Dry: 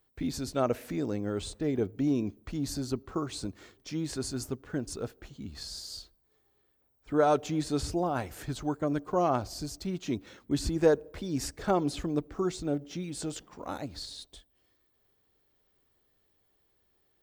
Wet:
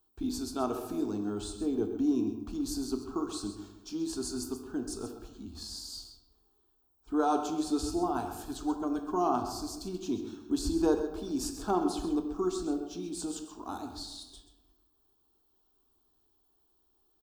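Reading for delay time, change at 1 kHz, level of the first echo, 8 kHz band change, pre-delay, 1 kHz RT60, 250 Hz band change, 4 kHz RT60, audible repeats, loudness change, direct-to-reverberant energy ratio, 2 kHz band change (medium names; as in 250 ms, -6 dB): 131 ms, 0.0 dB, -11.5 dB, 0.0 dB, 10 ms, 1.0 s, +0.5 dB, 0.65 s, 1, -1.0 dB, 4.5 dB, -7.0 dB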